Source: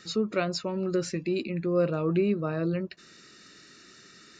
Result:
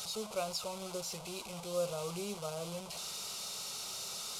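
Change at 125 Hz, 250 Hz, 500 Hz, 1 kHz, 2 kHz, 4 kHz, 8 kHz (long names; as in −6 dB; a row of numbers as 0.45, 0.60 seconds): −15.5, −18.0, −10.5, −5.0, −10.0, +1.0, +6.0 decibels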